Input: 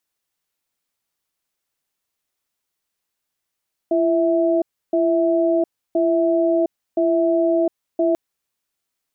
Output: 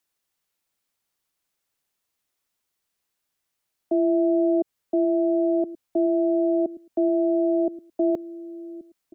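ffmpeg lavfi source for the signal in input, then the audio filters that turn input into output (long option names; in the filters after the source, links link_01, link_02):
-f lavfi -i "aevalsrc='0.133*(sin(2*PI*338*t)+sin(2*PI*656*t))*clip(min(mod(t,1.02),0.71-mod(t,1.02))/0.005,0,1)':duration=4.24:sample_rate=44100"
-filter_complex "[0:a]acrossover=split=340|420[link_01][link_02][link_03];[link_01]aecho=1:1:1129|2258:0.335|0.0569[link_04];[link_03]alimiter=level_in=2.5dB:limit=-24dB:level=0:latency=1:release=70,volume=-2.5dB[link_05];[link_04][link_02][link_05]amix=inputs=3:normalize=0"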